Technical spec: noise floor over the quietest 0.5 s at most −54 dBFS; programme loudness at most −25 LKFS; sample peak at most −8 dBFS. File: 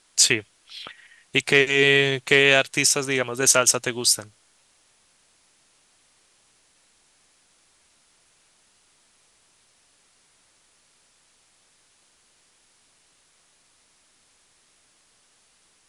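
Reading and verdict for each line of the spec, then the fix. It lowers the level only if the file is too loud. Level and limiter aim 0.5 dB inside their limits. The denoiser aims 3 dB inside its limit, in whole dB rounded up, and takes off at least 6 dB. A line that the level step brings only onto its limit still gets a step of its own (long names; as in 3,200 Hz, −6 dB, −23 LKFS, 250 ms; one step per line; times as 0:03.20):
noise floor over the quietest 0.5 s −62 dBFS: in spec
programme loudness −18.5 LKFS: out of spec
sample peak −2.0 dBFS: out of spec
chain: level −7 dB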